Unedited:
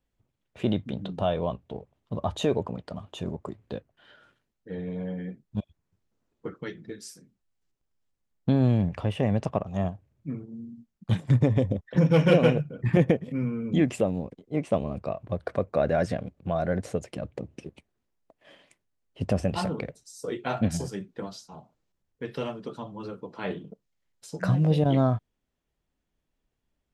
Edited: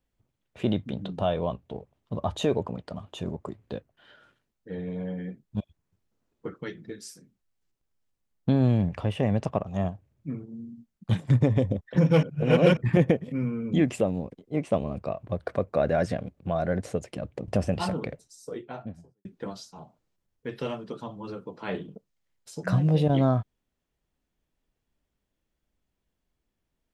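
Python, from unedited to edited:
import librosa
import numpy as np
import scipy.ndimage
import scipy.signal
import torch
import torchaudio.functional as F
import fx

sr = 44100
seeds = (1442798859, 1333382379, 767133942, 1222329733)

y = fx.studio_fade_out(x, sr, start_s=19.8, length_s=1.21)
y = fx.edit(y, sr, fx.reverse_span(start_s=12.23, length_s=0.54),
    fx.cut(start_s=17.48, length_s=1.76), tone=tone)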